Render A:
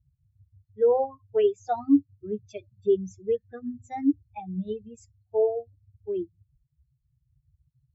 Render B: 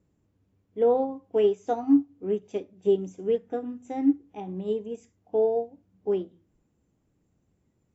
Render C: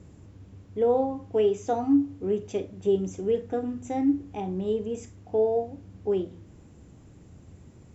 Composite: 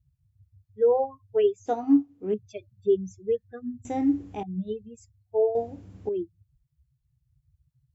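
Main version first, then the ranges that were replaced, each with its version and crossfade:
A
1.66–2.34 from B
3.85–4.43 from C
5.55–6.09 from C

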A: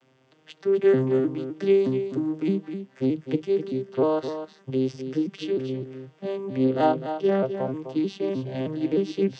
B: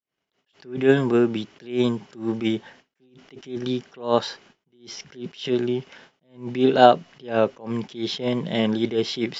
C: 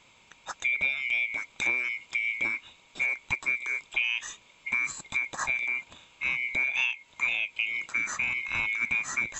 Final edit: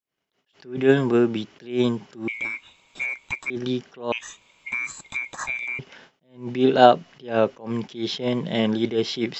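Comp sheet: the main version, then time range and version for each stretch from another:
B
2.28–3.5 from C
4.12–5.79 from C
not used: A

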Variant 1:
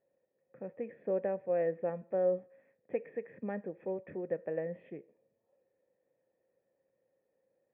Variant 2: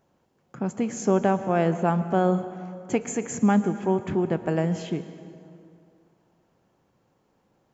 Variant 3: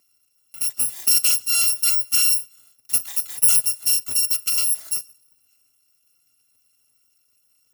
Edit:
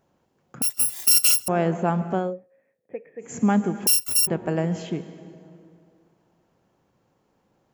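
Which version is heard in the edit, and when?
2
0.62–1.48 from 3
2.23–3.3 from 1, crossfade 0.24 s
3.87–4.27 from 3

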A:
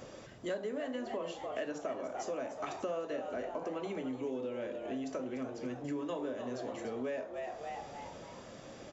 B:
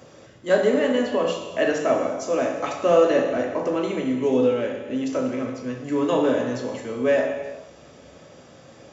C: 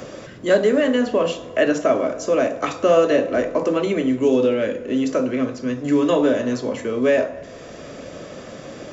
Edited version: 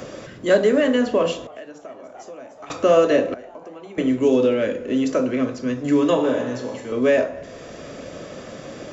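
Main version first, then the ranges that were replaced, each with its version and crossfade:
C
1.47–2.7 from A
3.34–3.98 from A
6.15–6.92 from B

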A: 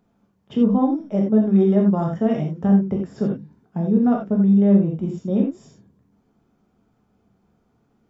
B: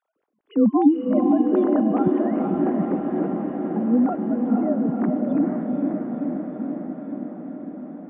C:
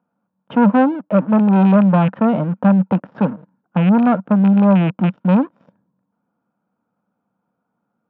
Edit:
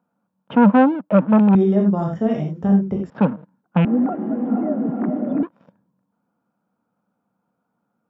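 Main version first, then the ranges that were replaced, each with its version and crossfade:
C
1.55–3.1 from A
3.85–5.43 from B

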